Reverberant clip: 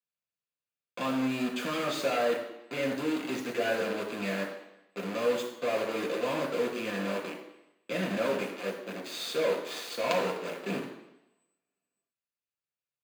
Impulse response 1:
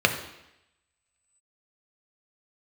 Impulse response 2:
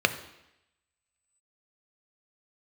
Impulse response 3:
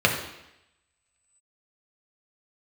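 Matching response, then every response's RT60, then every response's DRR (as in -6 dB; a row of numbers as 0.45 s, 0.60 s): 3; 0.85 s, 0.85 s, 0.85 s; 4.0 dB, 8.5 dB, 0.0 dB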